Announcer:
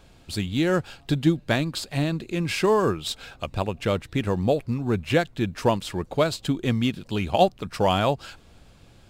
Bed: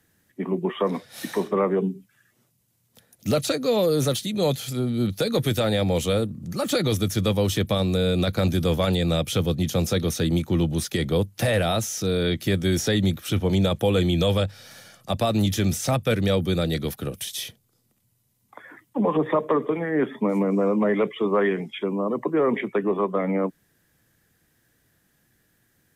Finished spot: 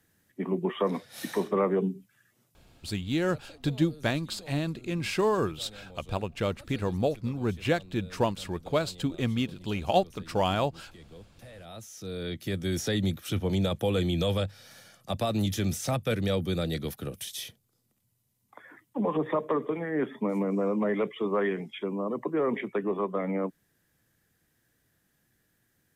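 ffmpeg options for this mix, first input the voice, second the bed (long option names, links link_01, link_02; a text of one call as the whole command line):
ffmpeg -i stem1.wav -i stem2.wav -filter_complex "[0:a]adelay=2550,volume=-5dB[link_01];[1:a]volume=17.5dB,afade=type=out:start_time=2.66:duration=0.3:silence=0.0668344,afade=type=in:start_time=11.59:duration=1.37:silence=0.0891251[link_02];[link_01][link_02]amix=inputs=2:normalize=0" out.wav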